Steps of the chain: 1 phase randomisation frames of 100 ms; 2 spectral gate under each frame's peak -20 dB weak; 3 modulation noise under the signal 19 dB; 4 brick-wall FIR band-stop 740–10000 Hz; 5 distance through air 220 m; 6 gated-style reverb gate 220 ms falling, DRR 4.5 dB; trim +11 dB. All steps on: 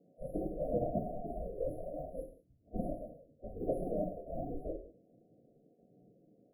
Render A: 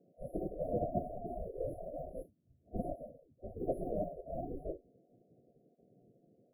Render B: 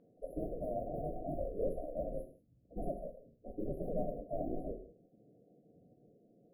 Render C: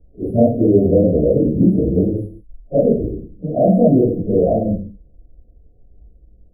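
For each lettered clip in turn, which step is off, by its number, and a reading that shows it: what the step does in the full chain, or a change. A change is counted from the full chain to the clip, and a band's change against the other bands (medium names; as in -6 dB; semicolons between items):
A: 6, crest factor change +2.5 dB; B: 1, momentary loudness spread change -1 LU; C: 2, 1 kHz band -10.0 dB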